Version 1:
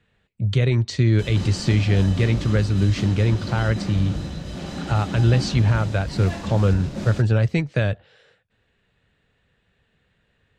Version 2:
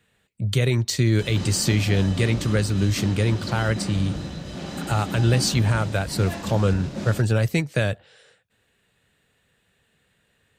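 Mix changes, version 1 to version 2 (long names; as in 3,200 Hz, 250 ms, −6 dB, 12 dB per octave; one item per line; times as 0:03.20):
speech: remove high-frequency loss of the air 130 metres
master: add low-shelf EQ 65 Hz −11 dB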